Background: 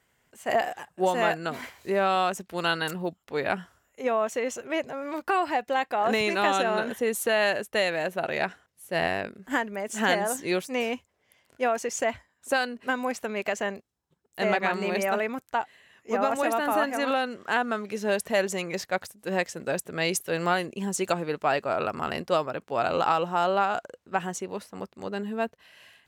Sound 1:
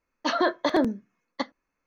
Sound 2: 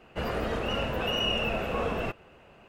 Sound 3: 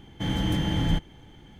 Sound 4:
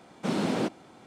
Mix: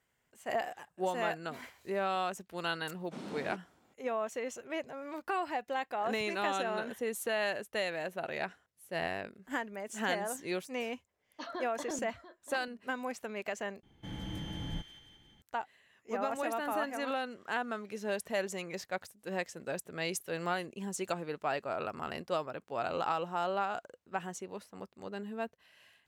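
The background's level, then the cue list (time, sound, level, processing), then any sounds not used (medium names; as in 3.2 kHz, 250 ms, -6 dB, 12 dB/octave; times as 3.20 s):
background -9 dB
2.88 s: add 4 -15.5 dB
11.14 s: add 1 -17.5 dB + delay 692 ms -14.5 dB
13.83 s: replace with 3 -15 dB + feedback echo behind a high-pass 176 ms, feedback 55%, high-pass 1.6 kHz, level -7 dB
not used: 2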